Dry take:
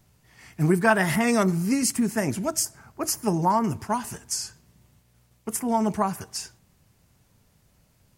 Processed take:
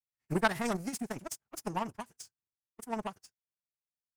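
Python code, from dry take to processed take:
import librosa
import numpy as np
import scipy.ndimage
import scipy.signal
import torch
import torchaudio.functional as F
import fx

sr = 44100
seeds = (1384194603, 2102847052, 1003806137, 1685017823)

y = fx.power_curve(x, sr, exponent=2.0)
y = fx.stretch_vocoder(y, sr, factor=0.51)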